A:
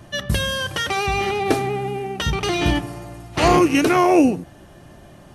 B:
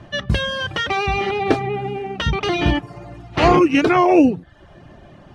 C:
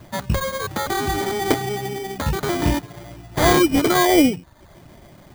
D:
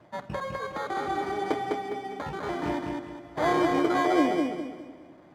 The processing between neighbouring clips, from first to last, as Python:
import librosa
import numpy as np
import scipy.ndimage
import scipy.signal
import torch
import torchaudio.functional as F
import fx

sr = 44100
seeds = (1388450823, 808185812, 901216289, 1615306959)

y1 = scipy.signal.sosfilt(scipy.signal.butter(2, 3800.0, 'lowpass', fs=sr, output='sos'), x)
y1 = fx.dereverb_blind(y1, sr, rt60_s=0.58)
y1 = y1 * 10.0 ** (2.5 / 20.0)
y2 = fx.sample_hold(y1, sr, seeds[0], rate_hz=2700.0, jitter_pct=0)
y2 = y2 * 10.0 ** (-2.0 / 20.0)
y3 = fx.bandpass_q(y2, sr, hz=740.0, q=0.57)
y3 = fx.echo_feedback(y3, sr, ms=204, feedback_pct=34, wet_db=-3.5)
y3 = fx.room_shoebox(y3, sr, seeds[1], volume_m3=2900.0, walls='mixed', distance_m=0.49)
y3 = y3 * 10.0 ** (-7.0 / 20.0)